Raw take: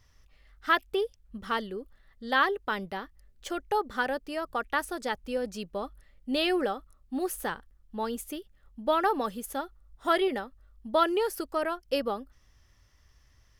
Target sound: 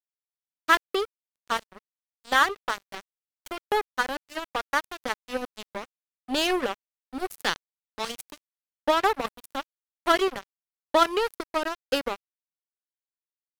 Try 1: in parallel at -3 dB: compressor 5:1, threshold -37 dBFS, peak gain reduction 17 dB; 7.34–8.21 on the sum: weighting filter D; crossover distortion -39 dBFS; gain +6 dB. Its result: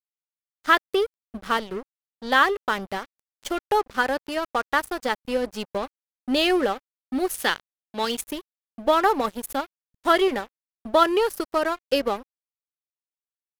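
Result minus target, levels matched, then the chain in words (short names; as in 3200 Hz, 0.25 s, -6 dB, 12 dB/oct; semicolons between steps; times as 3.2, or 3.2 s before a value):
crossover distortion: distortion -10 dB
in parallel at -3 dB: compressor 5:1, threshold -37 dBFS, peak gain reduction 17 dB; 7.34–8.21 on the sum: weighting filter D; crossover distortion -28 dBFS; gain +6 dB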